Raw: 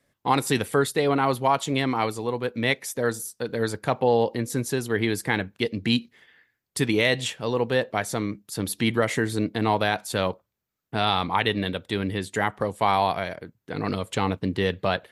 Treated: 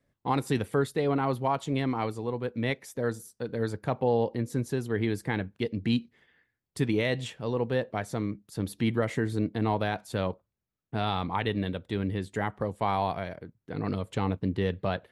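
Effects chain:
spectral tilt −2 dB per octave
level −7 dB

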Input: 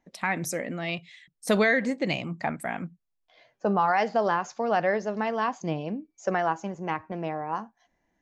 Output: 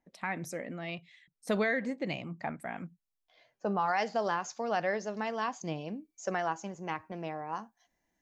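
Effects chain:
high-shelf EQ 4,100 Hz −6.5 dB, from 0:02.77 +4.5 dB, from 0:03.86 +12 dB
level −7 dB

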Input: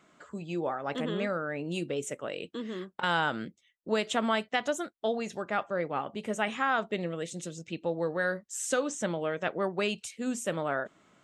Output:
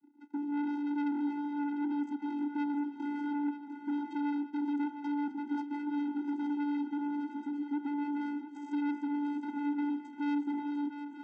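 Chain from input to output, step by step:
running median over 41 samples
low-shelf EQ 300 Hz +10 dB
in parallel at 0 dB: downward compressor, threshold −33 dBFS, peak gain reduction 12 dB
on the sum: amplitude modulation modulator 60 Hz, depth 35%
leveller curve on the samples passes 3
channel vocoder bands 16, square 290 Hz
soft clipping −26.5 dBFS, distortion −5 dB
on a send: feedback echo with a long and a short gap by turns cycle 932 ms, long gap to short 3 to 1, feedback 51%, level −10 dB
on the sum: level −4 dB

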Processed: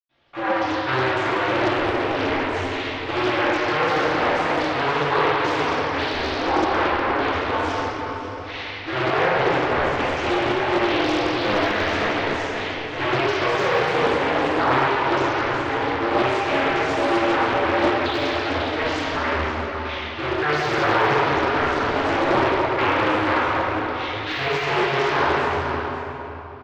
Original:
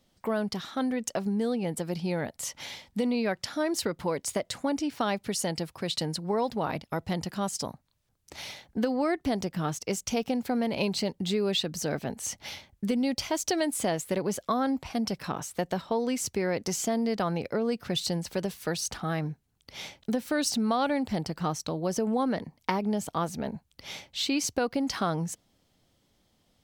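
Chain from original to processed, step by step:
sub-harmonics by changed cycles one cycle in 2, inverted
low-pass filter 3,100 Hz 12 dB per octave
tilt shelving filter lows −8.5 dB, about 710 Hz
mains-hum notches 60/120/180/240/300 Hz
single-tap delay 539 ms −12.5 dB
convolution reverb RT60 3.6 s, pre-delay 91 ms
de-essing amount 80%
highs frequency-modulated by the lows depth 0.46 ms

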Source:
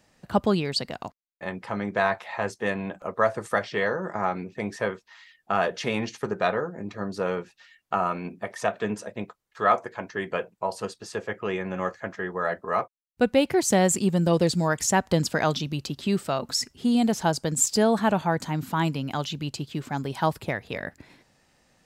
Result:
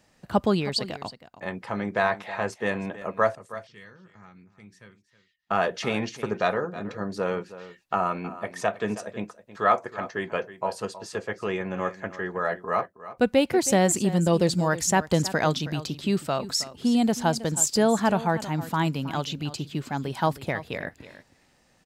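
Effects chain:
0:03.35–0:05.51: guitar amp tone stack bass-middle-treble 6-0-2
on a send: single-tap delay 319 ms −15 dB

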